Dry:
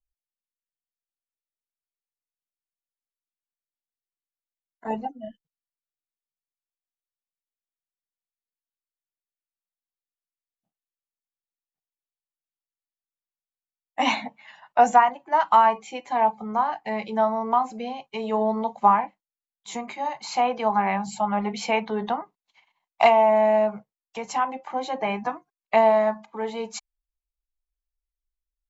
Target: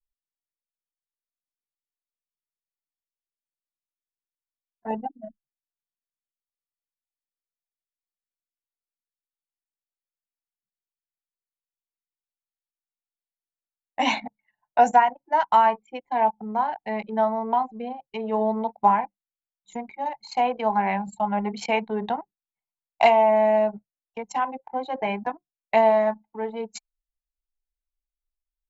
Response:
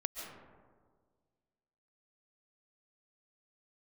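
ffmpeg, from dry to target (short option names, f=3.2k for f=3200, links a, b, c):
-af "bandreject=f=1.2k:w=5.1,anlmdn=15.8"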